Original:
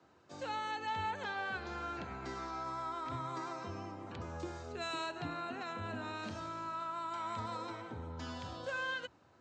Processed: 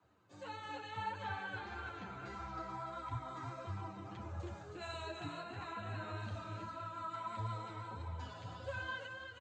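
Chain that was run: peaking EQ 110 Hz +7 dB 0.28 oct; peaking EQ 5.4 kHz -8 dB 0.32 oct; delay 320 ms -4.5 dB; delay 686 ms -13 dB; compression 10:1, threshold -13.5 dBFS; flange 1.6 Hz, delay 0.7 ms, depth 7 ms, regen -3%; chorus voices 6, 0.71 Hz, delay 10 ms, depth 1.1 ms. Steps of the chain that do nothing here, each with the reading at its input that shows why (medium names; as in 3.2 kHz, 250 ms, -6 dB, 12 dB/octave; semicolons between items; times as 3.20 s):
compression, threshold -13.5 dBFS: peak at its input -26.0 dBFS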